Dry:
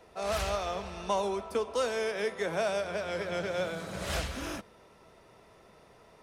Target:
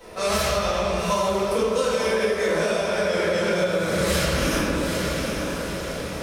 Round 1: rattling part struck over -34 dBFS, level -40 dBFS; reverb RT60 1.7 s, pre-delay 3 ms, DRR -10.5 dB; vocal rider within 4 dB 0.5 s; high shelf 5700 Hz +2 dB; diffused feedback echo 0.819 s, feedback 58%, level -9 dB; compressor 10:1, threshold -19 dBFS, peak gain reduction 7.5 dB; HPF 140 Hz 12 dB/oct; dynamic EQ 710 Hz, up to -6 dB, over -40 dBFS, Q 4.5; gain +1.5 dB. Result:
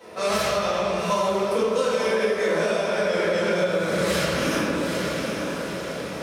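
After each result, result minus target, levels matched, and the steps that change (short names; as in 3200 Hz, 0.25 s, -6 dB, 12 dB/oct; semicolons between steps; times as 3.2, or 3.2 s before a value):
8000 Hz band -3.0 dB; 125 Hz band -2.5 dB
change: high shelf 5700 Hz +8 dB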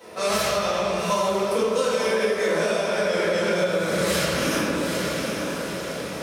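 125 Hz band -3.0 dB
remove: HPF 140 Hz 12 dB/oct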